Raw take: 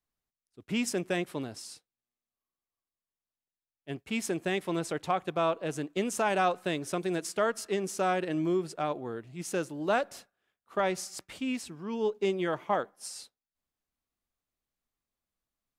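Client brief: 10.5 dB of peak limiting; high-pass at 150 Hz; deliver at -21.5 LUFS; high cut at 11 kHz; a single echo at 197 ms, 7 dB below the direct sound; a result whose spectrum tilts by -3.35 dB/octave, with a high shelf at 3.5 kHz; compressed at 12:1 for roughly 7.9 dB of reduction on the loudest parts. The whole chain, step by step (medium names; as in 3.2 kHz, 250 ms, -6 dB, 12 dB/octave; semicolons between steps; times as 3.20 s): high-pass 150 Hz; low-pass 11 kHz; treble shelf 3.5 kHz +4 dB; compression 12:1, threshold -30 dBFS; peak limiter -30 dBFS; delay 197 ms -7 dB; trim +18 dB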